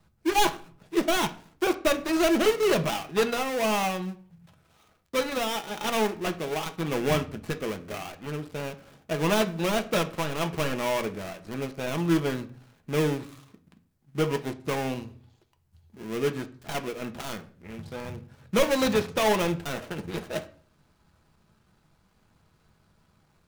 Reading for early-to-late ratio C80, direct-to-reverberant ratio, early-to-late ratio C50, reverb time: 20.5 dB, 6.5 dB, 16.0 dB, 0.45 s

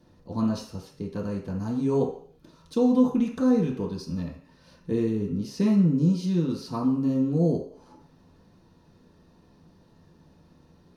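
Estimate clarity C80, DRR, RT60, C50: 10.0 dB, -5.0 dB, 0.55 s, 6.5 dB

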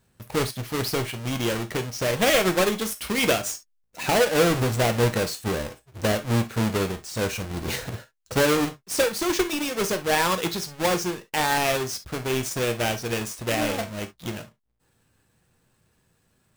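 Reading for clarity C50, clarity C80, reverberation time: 15.5 dB, 60.0 dB, no single decay rate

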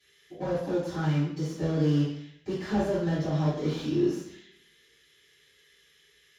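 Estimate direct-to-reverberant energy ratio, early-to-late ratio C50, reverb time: -13.5 dB, 1.0 dB, 0.70 s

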